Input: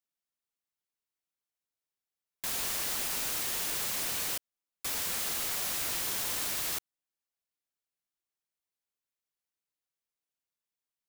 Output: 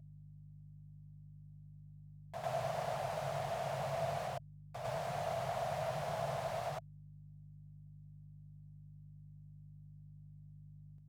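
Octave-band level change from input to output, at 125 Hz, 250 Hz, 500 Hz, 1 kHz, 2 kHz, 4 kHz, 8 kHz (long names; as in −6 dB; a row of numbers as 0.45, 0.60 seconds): +10.5, 0.0, +9.5, +5.0, −8.5, −15.5, −22.5 decibels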